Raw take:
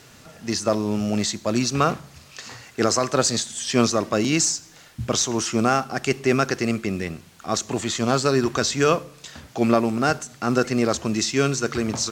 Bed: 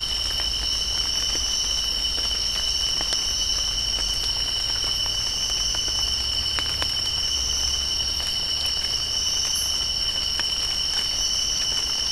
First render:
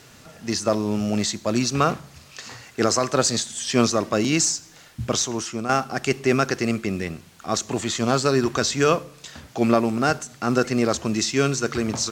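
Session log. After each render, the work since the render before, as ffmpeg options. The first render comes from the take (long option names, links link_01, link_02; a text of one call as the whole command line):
ffmpeg -i in.wav -filter_complex "[0:a]asplit=2[link_01][link_02];[link_01]atrim=end=5.69,asetpts=PTS-STARTPTS,afade=type=out:start_time=5.09:duration=0.6:silence=0.298538[link_03];[link_02]atrim=start=5.69,asetpts=PTS-STARTPTS,afade=type=in:duration=0.004:curve=hsin:silence=0.298538[link_04];[link_03][link_04]concat=n=2:v=0:a=1" out.wav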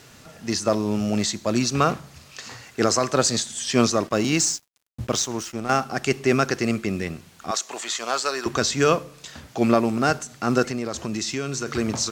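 ffmpeg -i in.wav -filter_complex "[0:a]asettb=1/sr,asplit=3[link_01][link_02][link_03];[link_01]atrim=end=4.074[link_04];[link_02]atrim=start=4.07:end=5.71,asetpts=PTS-STARTPTS,afade=type=in:duration=0.004:curve=qsin,afade=type=out:start_time=1.636:duration=0.004:curve=qsin,aeval=exprs='sgn(val(0))*max(abs(val(0))-0.0106,0)':channel_layout=same[link_05];[link_03]atrim=start=5.706[link_06];[link_04][link_05]acrossfade=duration=0.004:curve1=hsin:curve2=qsin[link_07];[link_07][link_06]acrossfade=duration=0.004:curve1=qsin:curve2=hsin,asettb=1/sr,asplit=3[link_08][link_09][link_10];[link_08]atrim=end=7.514[link_11];[link_09]atrim=start=7.51:end=8.46,asetpts=PTS-STARTPTS,afade=type=in:duration=0.004:curve=qsin,afade=type=out:start_time=0.946:duration=0.004:curve=qsin,highpass=700[link_12];[link_10]atrim=start=8.456[link_13];[link_11][link_12]acrossfade=duration=0.004:curve1=hsin:curve2=qsin[link_14];[link_14][link_13]acrossfade=duration=0.004:curve1=qsin:curve2=hsin,asplit=3[link_15][link_16][link_17];[link_15]afade=type=out:start_time=10.64:duration=0.02[link_18];[link_16]acompressor=threshold=-23dB:ratio=6:attack=3.2:release=140:knee=1:detection=peak,afade=type=in:start_time=10.64:duration=0.02,afade=type=out:start_time=11.66:duration=0.02[link_19];[link_17]afade=type=in:start_time=11.66:duration=0.02[link_20];[link_18][link_19][link_20]amix=inputs=3:normalize=0" out.wav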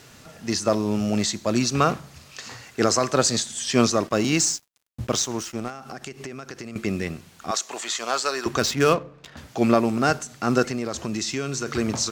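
ffmpeg -i in.wav -filter_complex "[0:a]asettb=1/sr,asplit=3[link_01][link_02][link_03];[link_01]atrim=end=5.684[link_04];[link_02]atrim=start=5.68:end=6.76,asetpts=PTS-STARTPTS,afade=type=in:duration=0.004:curve=qsin,afade=type=out:start_time=1.076:duration=0.004:curve=qsin,acompressor=threshold=-31dB:ratio=20:attack=3.2:release=140:knee=1:detection=peak[link_05];[link_03]atrim=start=6.756[link_06];[link_04][link_05]acrossfade=duration=0.004:curve1=hsin:curve2=qsin[link_07];[link_07][link_06]acrossfade=duration=0.004:curve1=qsin:curve2=hsin,asettb=1/sr,asplit=3[link_08][link_09][link_10];[link_08]atrim=end=8.594[link_11];[link_09]atrim=start=8.59:end=9.37,asetpts=PTS-STARTPTS,afade=type=in:duration=0.004:curve=qsin,afade=type=out:start_time=0.776:duration=0.004:curve=qsin,adynamicsmooth=sensitivity=6:basefreq=1400[link_12];[link_10]atrim=start=9.366[link_13];[link_11][link_12]acrossfade=duration=0.004:curve1=hsin:curve2=qsin[link_14];[link_14][link_13]acrossfade=duration=0.004:curve1=qsin:curve2=hsin" out.wav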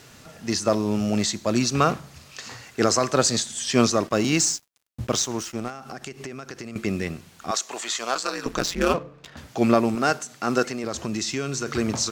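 ffmpeg -i in.wav -filter_complex "[0:a]asplit=3[link_01][link_02][link_03];[link_01]afade=type=out:start_time=8.14:duration=0.02[link_04];[link_02]aeval=exprs='val(0)*sin(2*PI*90*n/s)':channel_layout=same,afade=type=in:start_time=8.14:duration=0.02,afade=type=out:start_time=8.93:duration=0.02[link_05];[link_03]afade=type=in:start_time=8.93:duration=0.02[link_06];[link_04][link_05][link_06]amix=inputs=3:normalize=0,asettb=1/sr,asplit=3[link_07][link_08][link_09];[link_07]atrim=end=9.954[link_10];[link_08]atrim=start=9.95:end=10.84,asetpts=PTS-STARTPTS,afade=type=in:duration=0.004:curve=qsin,afade=type=out:start_time=0.886:duration=0.004:curve=qsin,highpass=frequency=260:poles=1[link_11];[link_09]atrim=start=10.836[link_12];[link_10][link_11]acrossfade=duration=0.004:curve1=hsin:curve2=qsin[link_13];[link_13][link_12]acrossfade=duration=0.004:curve1=qsin:curve2=hsin" out.wav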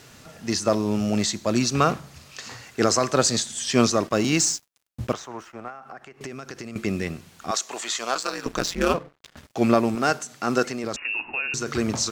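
ffmpeg -i in.wav -filter_complex "[0:a]asettb=1/sr,asplit=3[link_01][link_02][link_03];[link_01]atrim=end=5.134[link_04];[link_02]atrim=start=5.13:end=6.21,asetpts=PTS-STARTPTS,afade=type=in:duration=0.004:curve=qsin,afade=type=out:start_time=1.076:duration=0.004:curve=qsin,acrossover=split=560 2100:gain=0.251 1 0.112[link_05][link_06][link_07];[link_05][link_06][link_07]amix=inputs=3:normalize=0[link_08];[link_03]atrim=start=6.206[link_09];[link_04][link_08]acrossfade=duration=0.004:curve1=hsin:curve2=qsin[link_10];[link_10][link_09]acrossfade=duration=0.004:curve1=qsin:curve2=hsin,asettb=1/sr,asplit=3[link_11][link_12][link_13];[link_11]atrim=end=8.204[link_14];[link_12]atrim=start=8.2:end=10.08,asetpts=PTS-STARTPTS,afade=type=in:duration=0.004:curve=qsin,afade=type=out:start_time=1.876:duration=0.004:curve=qsin,aeval=exprs='sgn(val(0))*max(abs(val(0))-0.00562,0)':channel_layout=same[link_15];[link_13]atrim=start=10.076[link_16];[link_14][link_15]acrossfade=duration=0.004:curve1=hsin:curve2=qsin[link_17];[link_17][link_16]acrossfade=duration=0.004:curve1=qsin:curve2=hsin,asettb=1/sr,asplit=3[link_18][link_19][link_20];[link_18]atrim=end=10.964[link_21];[link_19]atrim=start=10.96:end=11.54,asetpts=PTS-STARTPTS,afade=type=in:duration=0.004:curve=qsin,afade=type=out:start_time=0.576:duration=0.004:curve=qsin,lowpass=frequency=2500:width_type=q:width=0.5098,lowpass=frequency=2500:width_type=q:width=0.6013,lowpass=frequency=2500:width_type=q:width=0.9,lowpass=frequency=2500:width_type=q:width=2.563,afreqshift=-2900[link_22];[link_20]atrim=start=11.536[link_23];[link_21][link_22]acrossfade=duration=0.004:curve1=hsin:curve2=qsin[link_24];[link_24][link_23]acrossfade=duration=0.004:curve1=qsin:curve2=hsin" out.wav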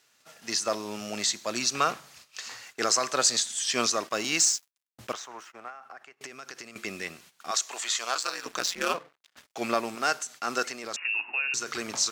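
ffmpeg -i in.wav -af "agate=range=-14dB:threshold=-45dB:ratio=16:detection=peak,highpass=frequency=1300:poles=1" out.wav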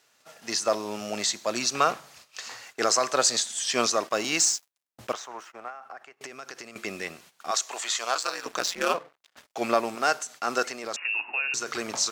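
ffmpeg -i in.wav -af "equalizer=frequency=650:width=0.8:gain=5" out.wav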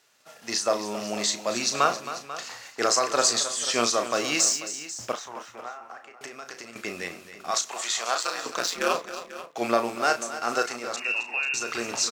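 ffmpeg -i in.wav -filter_complex "[0:a]asplit=2[link_01][link_02];[link_02]adelay=34,volume=-8dB[link_03];[link_01][link_03]amix=inputs=2:normalize=0,aecho=1:1:268|491:0.224|0.178" out.wav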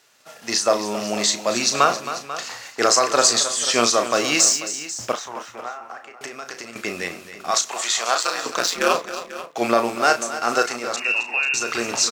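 ffmpeg -i in.wav -af "volume=6dB,alimiter=limit=-3dB:level=0:latency=1" out.wav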